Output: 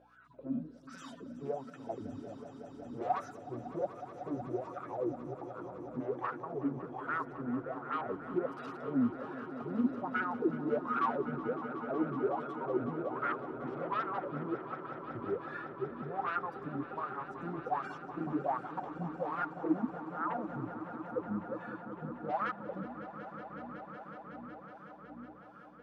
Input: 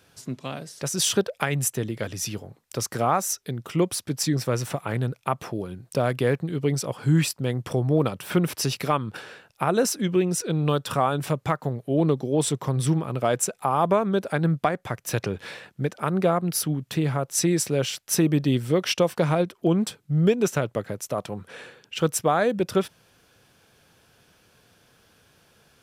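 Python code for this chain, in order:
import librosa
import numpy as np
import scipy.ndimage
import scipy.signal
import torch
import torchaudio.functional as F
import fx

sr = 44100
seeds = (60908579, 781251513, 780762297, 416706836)

p1 = fx.hpss_only(x, sr, part='harmonic')
p2 = fx.add_hum(p1, sr, base_hz=60, snr_db=20)
p3 = fx.fold_sine(p2, sr, drive_db=18, ceiling_db=-10.0)
p4 = p2 + (p3 * 10.0 ** (-6.0 / 20.0))
p5 = fx.wah_lfo(p4, sr, hz=1.3, low_hz=240.0, high_hz=1400.0, q=13.0)
p6 = fx.echo_swell(p5, sr, ms=185, loudest=5, wet_db=-15.0)
y = p6 * 10.0 ** (-1.5 / 20.0)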